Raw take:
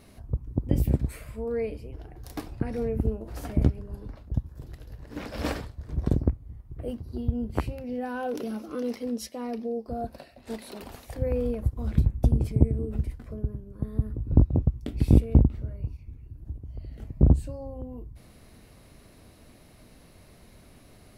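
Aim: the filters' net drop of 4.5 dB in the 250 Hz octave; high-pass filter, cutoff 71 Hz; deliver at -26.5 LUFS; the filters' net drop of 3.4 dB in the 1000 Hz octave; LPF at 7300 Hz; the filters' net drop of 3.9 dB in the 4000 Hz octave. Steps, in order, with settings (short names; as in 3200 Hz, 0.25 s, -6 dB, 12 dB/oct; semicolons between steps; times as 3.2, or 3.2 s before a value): HPF 71 Hz; LPF 7300 Hz; bell 250 Hz -5.5 dB; bell 1000 Hz -4.5 dB; bell 4000 Hz -4.5 dB; gain +5 dB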